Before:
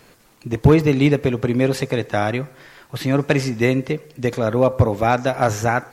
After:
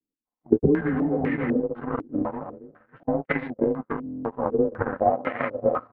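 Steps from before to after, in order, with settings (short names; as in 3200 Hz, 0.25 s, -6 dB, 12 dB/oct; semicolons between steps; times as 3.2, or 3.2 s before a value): inharmonic rescaling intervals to 90%; comb 3.9 ms, depth 56%; on a send: feedback echo 0.275 s, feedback 35%, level -7 dB; 0.52–1.6 on the sum: sample leveller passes 3; 3.03–3.9 gate -21 dBFS, range -17 dB; air absorption 400 m; compressor 10:1, threshold -17 dBFS, peak gain reduction 11 dB; power-law curve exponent 2; 5.13–5.55 HPF 170 Hz 6 dB/oct; stuck buffer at 4.04, samples 1024, times 8; stepped low-pass 4 Hz 310–2100 Hz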